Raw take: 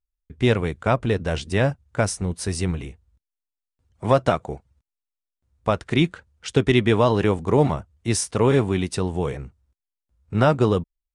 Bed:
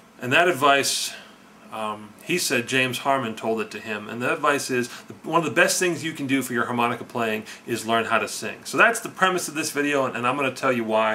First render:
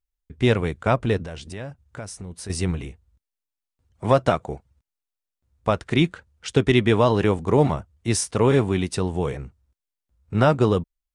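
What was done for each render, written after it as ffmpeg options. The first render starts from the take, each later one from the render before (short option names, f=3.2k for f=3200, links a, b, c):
-filter_complex "[0:a]asettb=1/sr,asplit=3[a][b][c];[a]atrim=end=1.254[d];[b]atrim=start=1.25:end=2.5,asetpts=PTS-STARTPTS,afade=t=in:d=0.004:c=qsin,afade=t=out:st=1.246:d=0.004:c=qsin,acompressor=threshold=-35dB:ratio=3:attack=3.2:release=140:knee=1:detection=peak[e];[c]atrim=start=2.496[f];[d][e]acrossfade=d=0.004:c1=hsin:c2=qsin[g];[g][f]acrossfade=d=0.004:c1=qsin:c2=hsin"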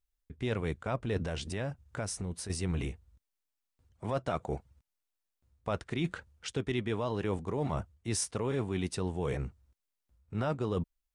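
-af "alimiter=limit=-11.5dB:level=0:latency=1:release=213,areverse,acompressor=threshold=-30dB:ratio=5,areverse"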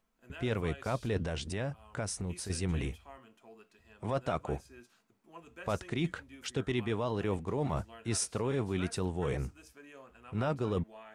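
-filter_complex "[1:a]volume=-30.5dB[a];[0:a][a]amix=inputs=2:normalize=0"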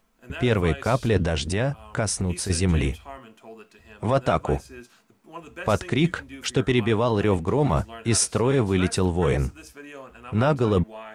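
-af "volume=11.5dB"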